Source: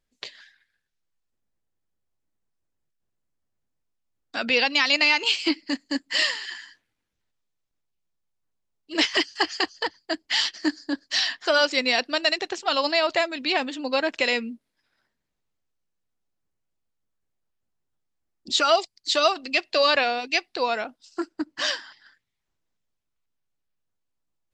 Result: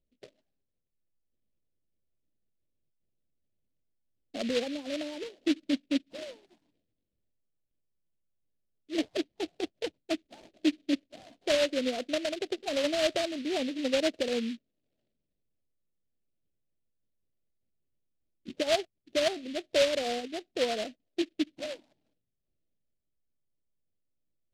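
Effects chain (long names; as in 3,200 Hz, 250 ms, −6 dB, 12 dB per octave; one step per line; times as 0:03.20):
brickwall limiter −13 dBFS, peak gain reduction 6 dB
Chebyshev low-pass filter 630 Hz, order 4
short delay modulated by noise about 2,900 Hz, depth 0.12 ms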